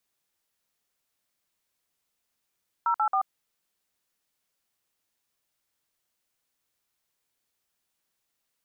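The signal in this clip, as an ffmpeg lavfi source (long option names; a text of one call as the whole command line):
ffmpeg -f lavfi -i "aevalsrc='0.0631*clip(min(mod(t,0.136),0.083-mod(t,0.136))/0.002,0,1)*(eq(floor(t/0.136),0)*(sin(2*PI*941*mod(t,0.136))+sin(2*PI*1336*mod(t,0.136)))+eq(floor(t/0.136),1)*(sin(2*PI*852*mod(t,0.136))+sin(2*PI*1336*mod(t,0.136)))+eq(floor(t/0.136),2)*(sin(2*PI*770*mod(t,0.136))+sin(2*PI*1209*mod(t,0.136))))':duration=0.408:sample_rate=44100" out.wav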